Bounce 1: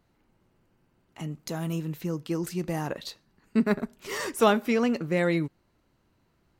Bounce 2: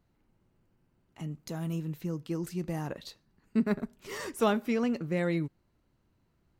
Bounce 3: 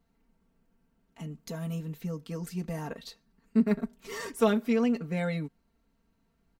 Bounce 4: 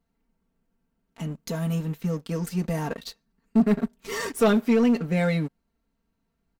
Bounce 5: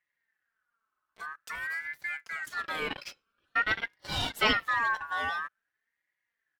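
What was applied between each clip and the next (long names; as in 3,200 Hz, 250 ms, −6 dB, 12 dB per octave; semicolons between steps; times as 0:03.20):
low-shelf EQ 250 Hz +6.5 dB; level −7 dB
comb filter 4.4 ms, depth 98%; level −2.5 dB
leveller curve on the samples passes 2
gain on a spectral selection 0:02.53–0:04.63, 820–4,000 Hz +11 dB; ring modulator whose carrier an LFO sweeps 1,600 Hz, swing 20%, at 0.49 Hz; level −6 dB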